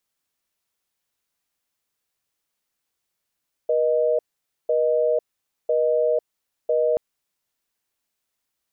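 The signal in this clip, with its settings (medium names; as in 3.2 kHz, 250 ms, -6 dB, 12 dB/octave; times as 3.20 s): call progress tone busy tone, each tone -20 dBFS 3.28 s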